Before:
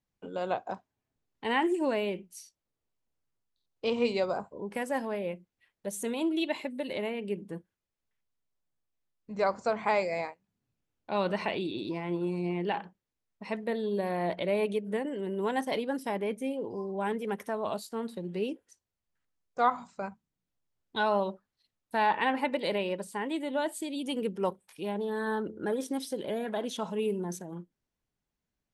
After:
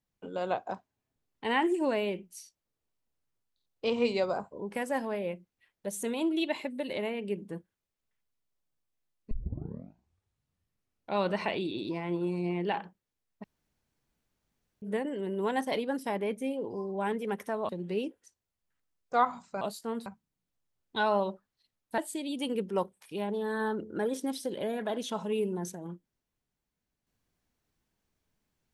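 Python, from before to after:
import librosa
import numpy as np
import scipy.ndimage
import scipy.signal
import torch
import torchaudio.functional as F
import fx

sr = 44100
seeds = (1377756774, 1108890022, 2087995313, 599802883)

y = fx.edit(x, sr, fx.tape_start(start_s=9.31, length_s=1.86),
    fx.room_tone_fill(start_s=13.44, length_s=1.38),
    fx.move(start_s=17.69, length_s=0.45, to_s=20.06),
    fx.cut(start_s=21.98, length_s=1.67), tone=tone)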